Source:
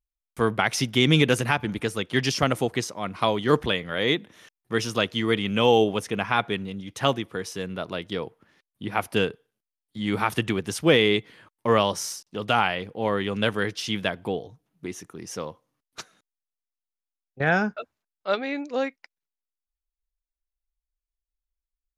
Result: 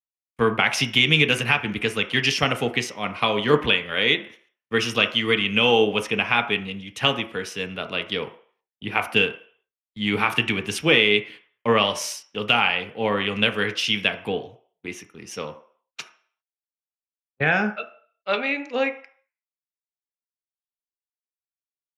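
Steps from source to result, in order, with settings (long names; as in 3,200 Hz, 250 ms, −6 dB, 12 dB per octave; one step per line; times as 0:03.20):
noise gate −44 dBFS, range −24 dB
parametric band 2,600 Hz +13.5 dB 0.84 octaves
downward compressor 2 to 1, threshold −21 dBFS, peak gain reduction 7.5 dB
on a send at −6.5 dB: convolution reverb RT60 0.60 s, pre-delay 3 ms
on the sum: multiband upward and downward expander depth 40%
level +1.5 dB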